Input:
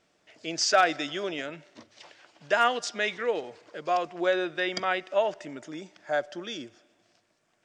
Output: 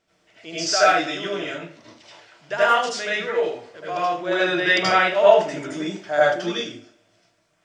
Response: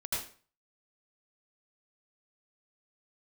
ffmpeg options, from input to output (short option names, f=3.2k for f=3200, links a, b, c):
-filter_complex "[0:a]asettb=1/sr,asplit=3[a][b][c];[a]atrim=end=4.314[d];[b]atrim=start=4.31:end=6.52,asetpts=PTS-STARTPTS,afade=t=in:d=0.004:c=qsin,afade=t=out:st=2.206:d=0.004:c=qsin,acontrast=66[e];[c]atrim=start=6.516[f];[d][e]acrossfade=d=0.004:c1=hsin:c2=qsin[g];[g][f]acrossfade=d=0.004:c1=qsin:c2=hsin[h];[1:a]atrim=start_sample=2205[i];[h][i]afir=irnorm=-1:irlink=0,volume=1dB"